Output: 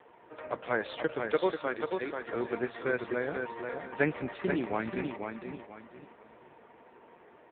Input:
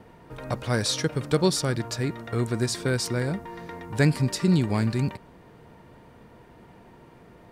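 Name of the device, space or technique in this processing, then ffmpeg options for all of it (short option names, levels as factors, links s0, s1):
telephone: -filter_complex "[0:a]asplit=3[s0][s1][s2];[s0]afade=t=out:st=1.31:d=0.02[s3];[s1]highpass=f=290:p=1,afade=t=in:st=1.31:d=0.02,afade=t=out:st=2.19:d=0.02[s4];[s2]afade=t=in:st=2.19:d=0.02[s5];[s3][s4][s5]amix=inputs=3:normalize=0,highpass=400,lowpass=3300,aecho=1:1:488|976|1464|1952:0.531|0.165|0.051|0.0158" -ar 8000 -c:a libopencore_amrnb -b:a 5900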